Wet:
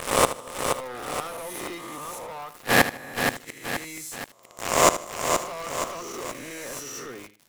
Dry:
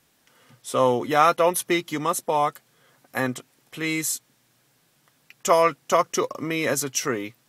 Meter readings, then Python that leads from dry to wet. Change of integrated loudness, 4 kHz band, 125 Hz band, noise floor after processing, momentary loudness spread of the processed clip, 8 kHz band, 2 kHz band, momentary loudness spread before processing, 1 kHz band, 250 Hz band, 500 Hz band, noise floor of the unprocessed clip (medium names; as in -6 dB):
-3.5 dB, +2.5 dB, -2.5 dB, -53 dBFS, 15 LU, +0.5 dB, +2.0 dB, 12 LU, -3.5 dB, -5.0 dB, -4.5 dB, -65 dBFS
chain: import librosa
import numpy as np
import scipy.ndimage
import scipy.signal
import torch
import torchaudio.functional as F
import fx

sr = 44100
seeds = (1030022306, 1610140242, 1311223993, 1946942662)

p1 = fx.spec_swells(x, sr, rise_s=1.61)
p2 = fx.leveller(p1, sr, passes=5)
p3 = fx.gate_flip(p2, sr, shuts_db=-7.0, range_db=-36)
p4 = p3 + fx.echo_feedback(p3, sr, ms=77, feedback_pct=26, wet_db=-13, dry=0)
p5 = fx.echo_crushed(p4, sr, ms=475, feedback_pct=55, bits=7, wet_db=-6.0)
y = p5 * librosa.db_to_amplitude(5.0)